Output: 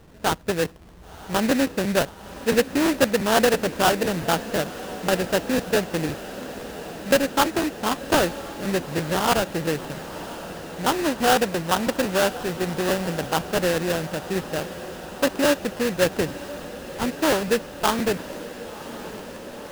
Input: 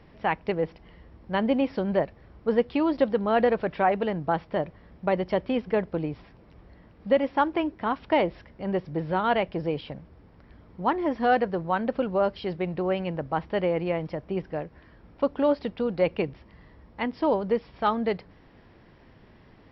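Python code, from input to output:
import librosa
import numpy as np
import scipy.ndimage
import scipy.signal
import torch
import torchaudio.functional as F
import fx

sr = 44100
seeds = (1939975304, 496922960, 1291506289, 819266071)

y = fx.sample_hold(x, sr, seeds[0], rate_hz=2200.0, jitter_pct=20)
y = fx.echo_diffused(y, sr, ms=1042, feedback_pct=77, wet_db=-15.0)
y = fx.buffer_crackle(y, sr, first_s=0.64, period_s=0.17, block=512, kind='repeat')
y = y * 10.0 ** (3.0 / 20.0)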